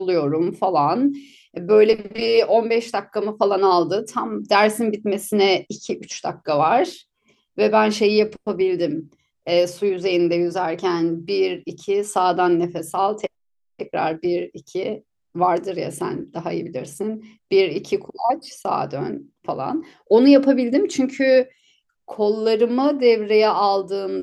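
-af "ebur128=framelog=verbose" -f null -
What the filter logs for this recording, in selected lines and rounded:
Integrated loudness:
  I:         -20.1 LUFS
  Threshold: -30.5 LUFS
Loudness range:
  LRA:         5.8 LU
  Threshold: -40.8 LUFS
  LRA low:   -24.5 LUFS
  LRA high:  -18.7 LUFS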